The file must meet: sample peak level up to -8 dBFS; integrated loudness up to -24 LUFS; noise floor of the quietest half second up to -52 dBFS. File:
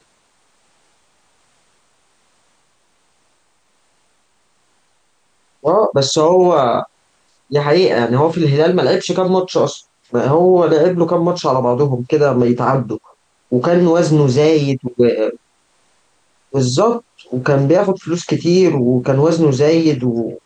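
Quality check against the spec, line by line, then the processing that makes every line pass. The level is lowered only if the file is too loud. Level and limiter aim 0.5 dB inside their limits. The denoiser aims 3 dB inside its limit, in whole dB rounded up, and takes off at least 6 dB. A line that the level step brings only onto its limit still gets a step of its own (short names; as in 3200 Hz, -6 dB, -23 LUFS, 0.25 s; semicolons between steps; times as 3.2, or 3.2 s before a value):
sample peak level -3.5 dBFS: fail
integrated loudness -14.5 LUFS: fail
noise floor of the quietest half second -59 dBFS: OK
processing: gain -10 dB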